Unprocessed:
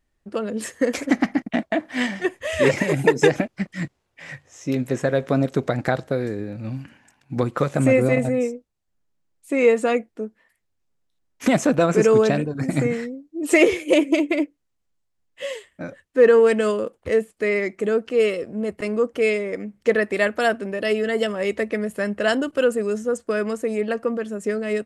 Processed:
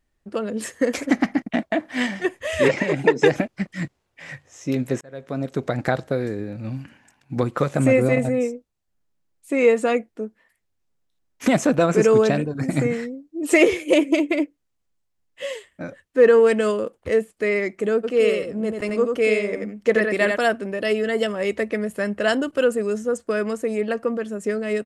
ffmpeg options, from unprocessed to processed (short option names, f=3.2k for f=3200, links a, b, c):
-filter_complex "[0:a]asplit=3[a][b][c];[a]afade=t=out:st=2.67:d=0.02[d];[b]highpass=170,lowpass=5k,afade=t=in:st=2.67:d=0.02,afade=t=out:st=3.25:d=0.02[e];[c]afade=t=in:st=3.25:d=0.02[f];[d][e][f]amix=inputs=3:normalize=0,asplit=3[g][h][i];[g]afade=t=out:st=18.03:d=0.02[j];[h]aecho=1:1:88:0.596,afade=t=in:st=18.03:d=0.02,afade=t=out:st=20.35:d=0.02[k];[i]afade=t=in:st=20.35:d=0.02[l];[j][k][l]amix=inputs=3:normalize=0,asplit=2[m][n];[m]atrim=end=5.01,asetpts=PTS-STARTPTS,afade=t=out:st=5.006:d=0.004:c=hsin[o];[n]atrim=start=5.01,asetpts=PTS-STARTPTS,afade=t=in:d=0.83[p];[o][p]concat=n=2:v=0:a=1"